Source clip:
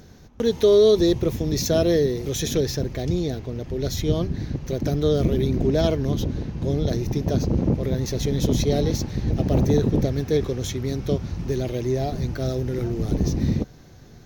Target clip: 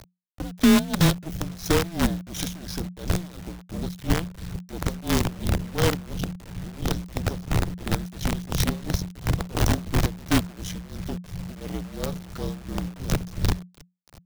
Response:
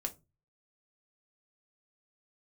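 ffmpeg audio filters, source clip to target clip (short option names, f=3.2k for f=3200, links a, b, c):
-af "tremolo=f=2.9:d=0.91,acrusher=bits=4:dc=4:mix=0:aa=0.000001,afreqshift=-180"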